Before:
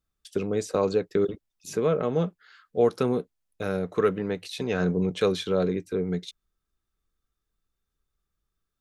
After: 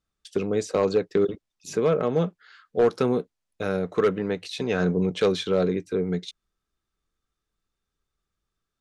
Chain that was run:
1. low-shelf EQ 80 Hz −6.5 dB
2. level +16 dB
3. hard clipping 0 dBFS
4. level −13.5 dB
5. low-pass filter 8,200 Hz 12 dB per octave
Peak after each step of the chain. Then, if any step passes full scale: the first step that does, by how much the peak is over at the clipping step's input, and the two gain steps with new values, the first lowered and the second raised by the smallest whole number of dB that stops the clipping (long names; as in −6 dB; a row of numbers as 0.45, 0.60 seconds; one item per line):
−10.0, +6.0, 0.0, −13.5, −13.5 dBFS
step 2, 6.0 dB
step 2 +10 dB, step 4 −7.5 dB